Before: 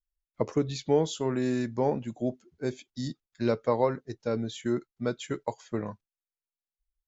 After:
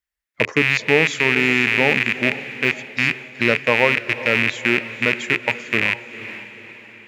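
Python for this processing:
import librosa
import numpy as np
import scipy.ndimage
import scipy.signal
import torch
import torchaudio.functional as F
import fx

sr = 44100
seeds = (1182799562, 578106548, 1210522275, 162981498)

y = fx.rattle_buzz(x, sr, strikes_db=-43.0, level_db=-17.0)
y = scipy.signal.sosfilt(scipy.signal.butter(2, 75.0, 'highpass', fs=sr, output='sos'), y)
y = fx.peak_eq(y, sr, hz=1900.0, db=12.5, octaves=0.72)
y = fx.echo_diffused(y, sr, ms=472, feedback_pct=47, wet_db=-13.5)
y = y * librosa.db_to_amplitude(5.5)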